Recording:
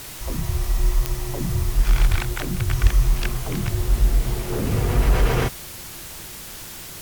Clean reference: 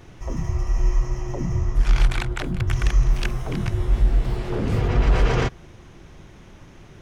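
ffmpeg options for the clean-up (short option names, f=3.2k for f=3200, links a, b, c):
-filter_complex "[0:a]adeclick=t=4,asplit=3[a][b][c];[a]afade=t=out:st=2.1:d=0.02[d];[b]highpass=f=140:w=0.5412,highpass=f=140:w=1.3066,afade=t=in:st=2.1:d=0.02,afade=t=out:st=2.22:d=0.02[e];[c]afade=t=in:st=2.22:d=0.02[f];[d][e][f]amix=inputs=3:normalize=0,asplit=3[g][h][i];[g]afade=t=out:st=2.82:d=0.02[j];[h]highpass=f=140:w=0.5412,highpass=f=140:w=1.3066,afade=t=in:st=2.82:d=0.02,afade=t=out:st=2.94:d=0.02[k];[i]afade=t=in:st=2.94:d=0.02[l];[j][k][l]amix=inputs=3:normalize=0,afwtdn=0.014"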